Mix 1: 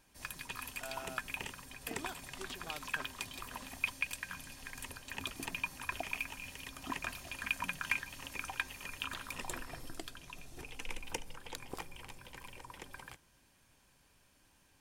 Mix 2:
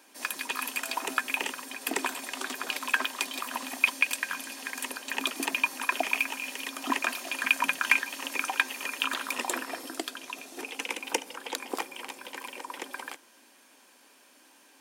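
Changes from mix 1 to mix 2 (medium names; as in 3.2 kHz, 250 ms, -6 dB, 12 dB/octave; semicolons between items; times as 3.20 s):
background +12.0 dB; master: add Chebyshev high-pass 250 Hz, order 4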